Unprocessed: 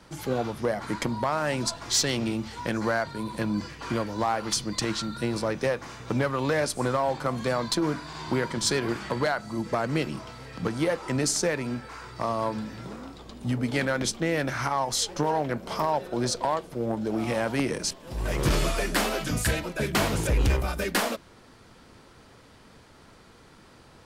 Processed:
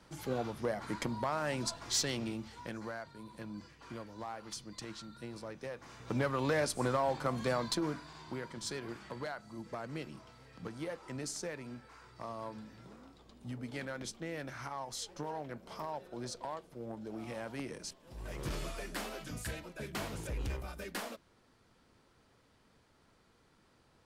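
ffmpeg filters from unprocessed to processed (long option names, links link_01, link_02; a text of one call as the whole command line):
ffmpeg -i in.wav -af "volume=3dB,afade=type=out:start_time=1.92:duration=1.03:silence=0.354813,afade=type=in:start_time=5.7:duration=0.6:silence=0.281838,afade=type=out:start_time=7.53:duration=0.73:silence=0.354813" out.wav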